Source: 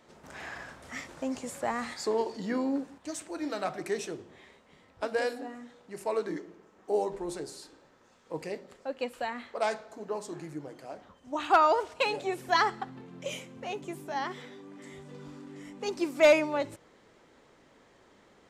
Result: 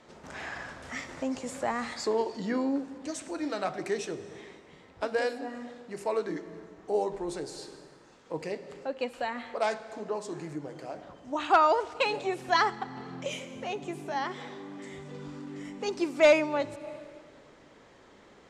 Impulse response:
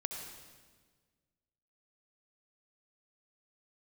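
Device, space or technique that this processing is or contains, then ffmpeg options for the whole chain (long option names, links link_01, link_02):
ducked reverb: -filter_complex "[0:a]asplit=3[link_01][link_02][link_03];[1:a]atrim=start_sample=2205[link_04];[link_02][link_04]afir=irnorm=-1:irlink=0[link_05];[link_03]apad=whole_len=815628[link_06];[link_05][link_06]sidechaincompress=threshold=-41dB:ratio=8:attack=16:release=294,volume=-3.5dB[link_07];[link_01][link_07]amix=inputs=2:normalize=0,lowpass=8300,asettb=1/sr,asplit=3[link_08][link_09][link_10];[link_08]atrim=end=6.104[link_11];[link_09]atrim=start=6.1:end=6.95,asetpts=PTS-STARTPTS,afade=type=in:duration=0.004:curve=qsin,afade=type=out:start_time=0.846:duration=0.004:curve=qsin,asubboost=boost=11:cutoff=140[link_12];[link_10]atrim=start=6.946[link_13];[link_11][link_12]acrossfade=duration=0.004:curve1=hsin:curve2=qsin[link_14];[link_14][link_13]acrossfade=duration=0.004:curve1=qsin:curve2=hsin"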